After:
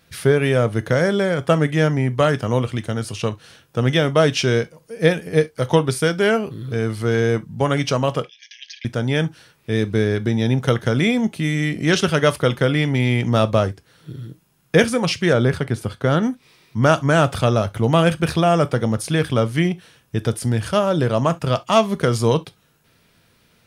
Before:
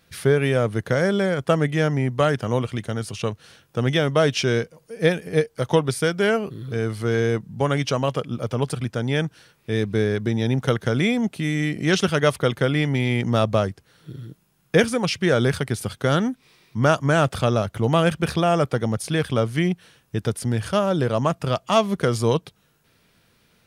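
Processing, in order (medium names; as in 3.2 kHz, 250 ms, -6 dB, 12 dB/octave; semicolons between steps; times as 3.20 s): 8.24–8.85 s: brick-wall FIR band-pass 1.6–6.6 kHz; 15.33–16.23 s: treble shelf 3.1 kHz -10 dB; gated-style reverb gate 90 ms falling, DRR 12 dB; trim +2.5 dB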